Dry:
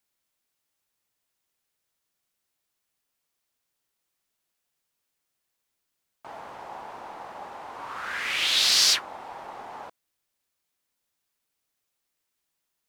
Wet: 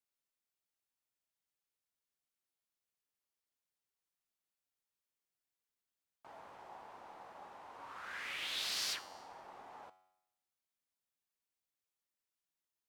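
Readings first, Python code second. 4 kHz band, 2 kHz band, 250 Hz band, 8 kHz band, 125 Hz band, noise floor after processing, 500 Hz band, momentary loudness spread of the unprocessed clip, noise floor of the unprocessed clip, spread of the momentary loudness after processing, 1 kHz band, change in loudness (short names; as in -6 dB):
-18.0 dB, -14.5 dB, -13.0 dB, -18.5 dB, n/a, under -85 dBFS, -13.0 dB, 23 LU, -81 dBFS, 19 LU, -13.5 dB, -18.5 dB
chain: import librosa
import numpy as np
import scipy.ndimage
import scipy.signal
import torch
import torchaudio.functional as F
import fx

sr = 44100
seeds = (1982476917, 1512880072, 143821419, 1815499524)

y = fx.comb_fb(x, sr, f0_hz=93.0, decay_s=0.85, harmonics='all', damping=0.0, mix_pct=60)
y = fx.dynamic_eq(y, sr, hz=5500.0, q=0.71, threshold_db=-41.0, ratio=4.0, max_db=-6)
y = F.gain(torch.from_numpy(y), -6.5).numpy()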